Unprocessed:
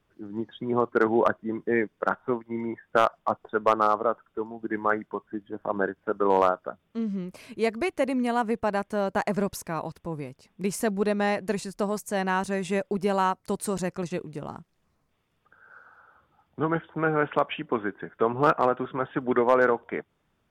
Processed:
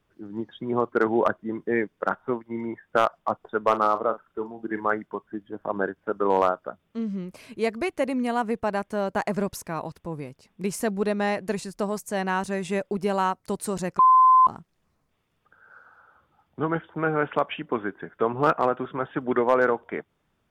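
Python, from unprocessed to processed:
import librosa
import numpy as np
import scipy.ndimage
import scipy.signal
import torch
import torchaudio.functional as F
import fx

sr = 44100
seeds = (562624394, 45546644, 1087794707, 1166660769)

y = fx.doubler(x, sr, ms=41.0, db=-12, at=(3.66, 4.81))
y = fx.edit(y, sr, fx.bleep(start_s=13.99, length_s=0.48, hz=1030.0, db=-12.0), tone=tone)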